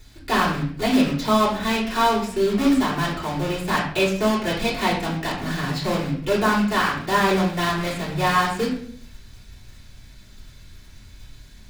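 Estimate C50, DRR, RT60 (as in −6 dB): 5.5 dB, −7.5 dB, 0.55 s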